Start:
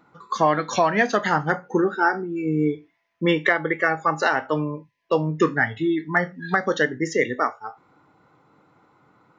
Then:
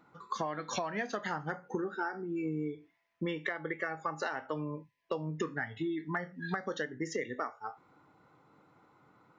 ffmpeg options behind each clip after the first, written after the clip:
ffmpeg -i in.wav -af "acompressor=threshold=-26dB:ratio=10,volume=-5.5dB" out.wav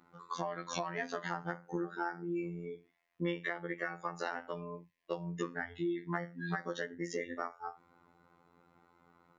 ffmpeg -i in.wav -af "afftfilt=real='hypot(re,im)*cos(PI*b)':imag='0':win_size=2048:overlap=0.75,volume=1dB" out.wav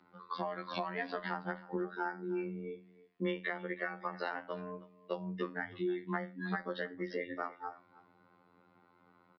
ffmpeg -i in.wav -af "afreqshift=14,aecho=1:1:316:0.112,aresample=11025,aresample=44100" out.wav

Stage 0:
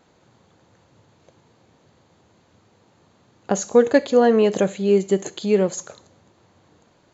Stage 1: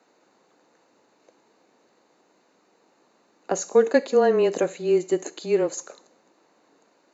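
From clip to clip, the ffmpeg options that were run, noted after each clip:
ffmpeg -i in.wav -af "highpass=frequency=270:width=0.5412,highpass=frequency=270:width=1.3066,bandreject=frequency=3300:width=5.3,afreqshift=-18,volume=-2.5dB" out.wav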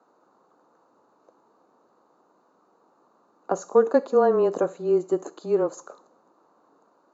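ffmpeg -i in.wav -af "highshelf=frequency=1600:width_type=q:width=3:gain=-9,volume=-1.5dB" out.wav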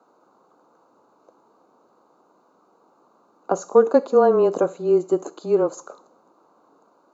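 ffmpeg -i in.wav -af "bandreject=frequency=1800:width=5.1,volume=3.5dB" out.wav

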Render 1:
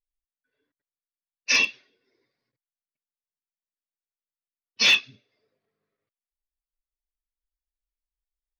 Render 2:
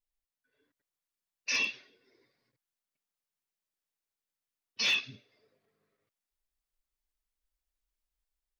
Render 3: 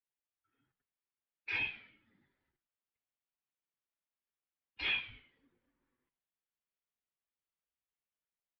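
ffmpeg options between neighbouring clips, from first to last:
ffmpeg -i in.wav -filter_complex "[0:a]asplit=2[link_01][link_02];[link_02]acompressor=threshold=-26dB:ratio=6,volume=-1dB[link_03];[link_01][link_03]amix=inputs=2:normalize=0,alimiter=limit=-20dB:level=0:latency=1:release=18,dynaudnorm=framelen=220:gausssize=5:maxgain=4dB,volume=-6dB" out.wav
ffmpeg -i in.wav -filter_complex "[0:a]flanger=delay=2.2:depth=9:regen=85:speed=0.55:shape=triangular,asplit=4[link_01][link_02][link_03][link_04];[link_02]adelay=103,afreqshift=-110,volume=-18dB[link_05];[link_03]adelay=206,afreqshift=-220,volume=-26.9dB[link_06];[link_04]adelay=309,afreqshift=-330,volume=-35.7dB[link_07];[link_01][link_05][link_06][link_07]amix=inputs=4:normalize=0,highpass=frequency=160:width_type=q:width=0.5412,highpass=frequency=160:width_type=q:width=1.307,lowpass=frequency=3500:width_type=q:width=0.5176,lowpass=frequency=3500:width_type=q:width=0.7071,lowpass=frequency=3500:width_type=q:width=1.932,afreqshift=-160" out.wav

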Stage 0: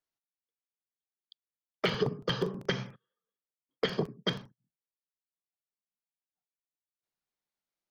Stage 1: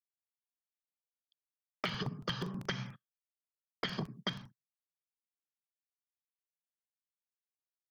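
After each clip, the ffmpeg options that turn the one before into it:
ffmpeg -i in.wav -af "agate=range=-33dB:threshold=-45dB:ratio=3:detection=peak,equalizer=frequency=450:width_type=o:width=0.89:gain=-14,acompressor=threshold=-38dB:ratio=6,volume=4.5dB" out.wav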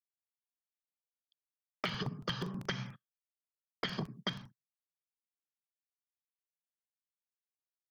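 ffmpeg -i in.wav -af anull out.wav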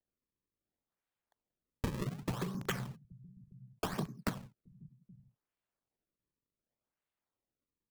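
ffmpeg -i in.wav -filter_complex "[0:a]acrossover=split=170[link_01][link_02];[link_01]aecho=1:1:822:0.316[link_03];[link_02]acrusher=samples=35:mix=1:aa=0.000001:lfo=1:lforange=56:lforate=0.67[link_04];[link_03][link_04]amix=inputs=2:normalize=0,volume=1dB" out.wav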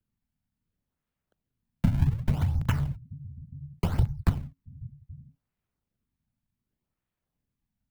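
ffmpeg -i in.wav -af "afreqshift=-270,crystalizer=i=2:c=0,bass=frequency=250:gain=12,treble=frequency=4000:gain=-15,volume=2.5dB" out.wav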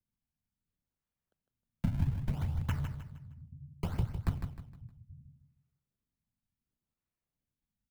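ffmpeg -i in.wav -af "aecho=1:1:155|310|465|620:0.398|0.143|0.0516|0.0186,volume=-8dB" out.wav

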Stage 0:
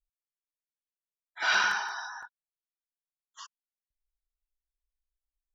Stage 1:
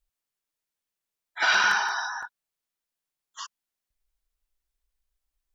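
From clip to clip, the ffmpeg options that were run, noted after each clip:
ffmpeg -i in.wav -af "alimiter=limit=-20dB:level=0:latency=1:release=134,volume=8dB" out.wav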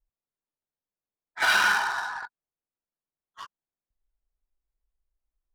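ffmpeg -i in.wav -af "adynamicsmooth=sensitivity=5:basefreq=1200" out.wav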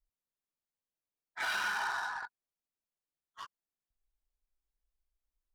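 ffmpeg -i in.wav -af "alimiter=limit=-21.5dB:level=0:latency=1:release=46,volume=-4.5dB" out.wav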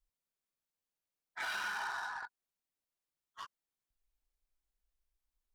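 ffmpeg -i in.wav -af "acompressor=threshold=-43dB:ratio=1.5" out.wav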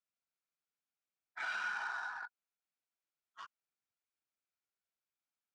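ffmpeg -i in.wav -af "highpass=frequency=110:width=0.5412,highpass=frequency=110:width=1.3066,equalizer=frequency=730:width_type=q:width=4:gain=4,equalizer=frequency=1400:width_type=q:width=4:gain=9,equalizer=frequency=2400:width_type=q:width=4:gain=6,lowpass=frequency=8000:width=0.5412,lowpass=frequency=8000:width=1.3066,volume=-6.5dB" out.wav

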